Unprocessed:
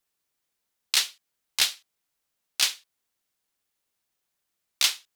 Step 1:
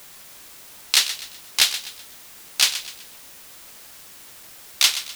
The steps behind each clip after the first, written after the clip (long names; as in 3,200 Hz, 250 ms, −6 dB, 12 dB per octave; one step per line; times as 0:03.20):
in parallel at −12 dB: bit-depth reduction 6 bits, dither triangular
on the sum: feedback echo with a high-pass in the loop 126 ms, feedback 38%, level −12 dB
level +3.5 dB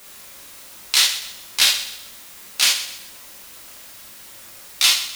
reverb whose tail is shaped and stops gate 100 ms flat, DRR −3 dB
level −2 dB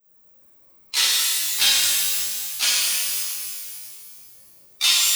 spectral dynamics exaggerated over time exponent 2
reverb with rising layers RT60 2.2 s, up +12 semitones, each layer −2 dB, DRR −5 dB
level −3.5 dB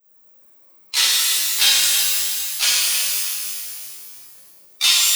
low-shelf EQ 160 Hz −11 dB
feedback echo at a low word length 319 ms, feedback 35%, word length 7 bits, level −10 dB
level +2.5 dB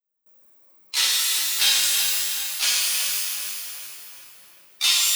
noise gate with hold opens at −41 dBFS
tape delay 373 ms, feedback 58%, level −7.5 dB, low-pass 3,300 Hz
level −4 dB